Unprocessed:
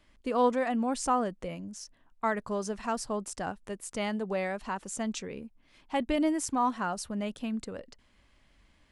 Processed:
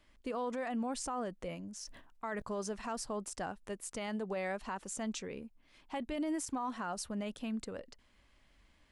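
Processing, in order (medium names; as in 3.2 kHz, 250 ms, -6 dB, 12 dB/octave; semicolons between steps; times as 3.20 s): peaking EQ 140 Hz -2.5 dB 1.9 oct; peak limiter -27 dBFS, peak gain reduction 11.5 dB; 1.76–2.42 s: decay stretcher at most 55 dB/s; trim -2.5 dB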